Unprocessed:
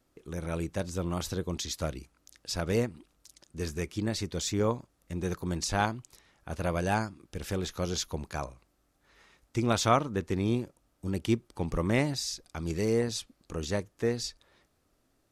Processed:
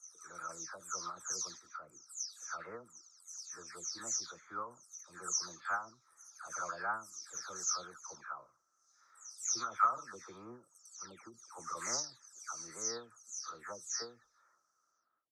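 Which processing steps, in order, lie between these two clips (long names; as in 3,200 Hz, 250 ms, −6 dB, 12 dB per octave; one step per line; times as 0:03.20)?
every frequency bin delayed by itself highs early, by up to 394 ms
pair of resonant band-passes 2,800 Hz, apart 2.2 octaves
every ending faded ahead of time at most 170 dB per second
level +7 dB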